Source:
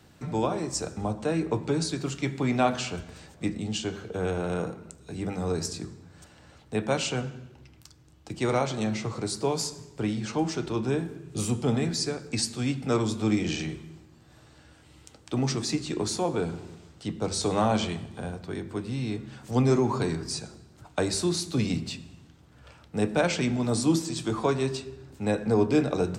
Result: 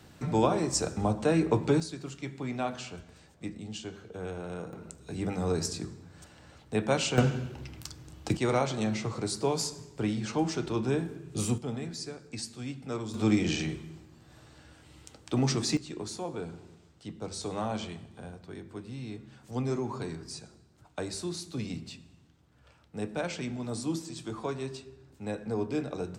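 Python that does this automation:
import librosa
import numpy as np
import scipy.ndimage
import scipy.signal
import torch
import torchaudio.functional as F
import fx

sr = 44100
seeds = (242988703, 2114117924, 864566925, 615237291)

y = fx.gain(x, sr, db=fx.steps((0.0, 2.0), (1.8, -9.0), (4.73, -0.5), (7.18, 9.0), (8.37, -1.5), (11.58, -10.0), (13.14, 0.0), (15.77, -9.0)))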